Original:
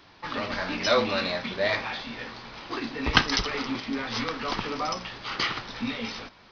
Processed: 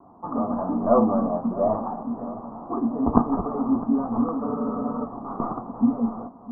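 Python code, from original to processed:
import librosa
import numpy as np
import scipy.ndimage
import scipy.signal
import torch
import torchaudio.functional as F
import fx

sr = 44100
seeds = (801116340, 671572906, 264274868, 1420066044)

y = fx.tracing_dist(x, sr, depth_ms=0.49)
y = scipy.signal.sosfilt(scipy.signal.cheby1(6, 1.0, 1200.0, 'lowpass', fs=sr, output='sos'), y)
y = fx.low_shelf(y, sr, hz=90.0, db=-7.5)
y = fx.small_body(y, sr, hz=(230.0, 700.0), ring_ms=45, db=11)
y = fx.vibrato(y, sr, rate_hz=0.54, depth_cents=8.5)
y = fx.echo_feedback(y, sr, ms=657, feedback_pct=49, wet_db=-16.5)
y = fx.spec_freeze(y, sr, seeds[0], at_s=4.44, hold_s=0.61)
y = F.gain(torch.from_numpy(y), 3.5).numpy()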